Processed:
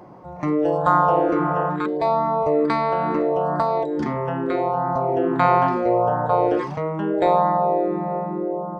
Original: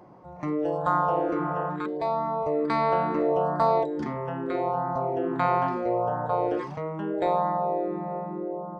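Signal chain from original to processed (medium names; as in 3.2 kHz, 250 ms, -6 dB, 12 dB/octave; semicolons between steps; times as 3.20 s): 2.66–5.09 s: compression, threshold -24 dBFS, peak gain reduction 7 dB; trim +7 dB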